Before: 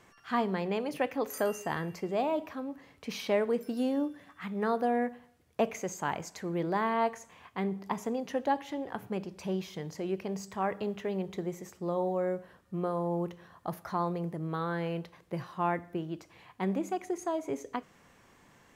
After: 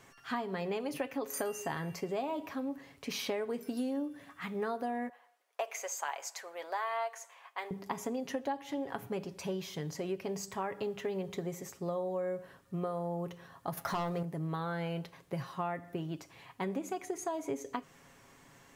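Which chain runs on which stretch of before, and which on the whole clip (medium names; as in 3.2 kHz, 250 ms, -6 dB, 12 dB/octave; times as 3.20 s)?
5.09–7.71 s: high-pass 600 Hz 24 dB/octave + tape noise reduction on one side only decoder only
13.77–14.23 s: hum notches 60/120/180/240/300/360/420/480/540 Hz + waveshaping leveller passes 2
whole clip: treble shelf 5 kHz +5 dB; comb 7.3 ms, depth 44%; compression, threshold -32 dBFS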